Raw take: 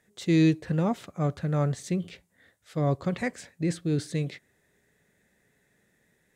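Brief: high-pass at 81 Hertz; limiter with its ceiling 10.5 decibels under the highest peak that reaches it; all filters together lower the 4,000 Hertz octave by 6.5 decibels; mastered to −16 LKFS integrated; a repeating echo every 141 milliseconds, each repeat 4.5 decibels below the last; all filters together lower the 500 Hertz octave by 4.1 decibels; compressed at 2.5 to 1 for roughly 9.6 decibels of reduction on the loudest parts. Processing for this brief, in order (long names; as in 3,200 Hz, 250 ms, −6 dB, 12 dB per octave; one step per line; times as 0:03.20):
high-pass filter 81 Hz
parametric band 500 Hz −5.5 dB
parametric band 4,000 Hz −7.5 dB
downward compressor 2.5 to 1, threshold −33 dBFS
brickwall limiter −32.5 dBFS
repeating echo 141 ms, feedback 60%, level −4.5 dB
level +25.5 dB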